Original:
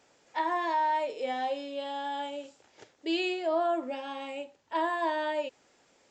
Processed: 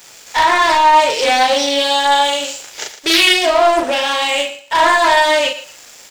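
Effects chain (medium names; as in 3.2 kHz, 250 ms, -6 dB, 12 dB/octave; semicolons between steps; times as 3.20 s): high-pass 160 Hz 6 dB/octave; tilt EQ +4.5 dB/octave; in parallel at -1 dB: compression, threshold -41 dBFS, peak gain reduction 16 dB; on the sum: waveshaping leveller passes 3; doubling 39 ms -3 dB; thinning echo 115 ms, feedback 23%, level -12 dB; loudspeaker Doppler distortion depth 0.26 ms; trim +6 dB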